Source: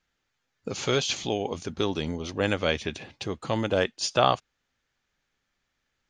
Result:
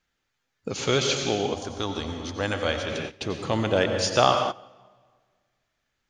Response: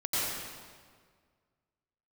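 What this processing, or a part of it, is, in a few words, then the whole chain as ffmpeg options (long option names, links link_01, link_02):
keyed gated reverb: -filter_complex "[0:a]asplit=3[link_01][link_02][link_03];[1:a]atrim=start_sample=2205[link_04];[link_02][link_04]afir=irnorm=-1:irlink=0[link_05];[link_03]apad=whole_len=268993[link_06];[link_05][link_06]sidechaingate=range=-17dB:threshold=-43dB:ratio=16:detection=peak,volume=-11.5dB[link_07];[link_01][link_07]amix=inputs=2:normalize=0,asettb=1/sr,asplit=3[link_08][link_09][link_10];[link_08]atrim=end=1.544[link_11];[link_09]atrim=start=1.54:end=2.92,asetpts=PTS-STARTPTS,afade=type=in:duration=0.004:curve=qsin,afade=type=out:start_time=1.376:duration=0.004:curve=qsin,equalizer=frequency=160:width_type=o:width=0.67:gain=-11,equalizer=frequency=400:width_type=o:width=0.67:gain=-8,equalizer=frequency=2500:width_type=o:width=0.67:gain=-6[link_12];[link_10]atrim=start=2.916[link_13];[link_11][link_12]acrossfade=duration=0.004:curve1=hsin:curve2=qsin[link_14];[link_14][link_13]acrossfade=duration=0.004:curve1=qsin:curve2=hsin"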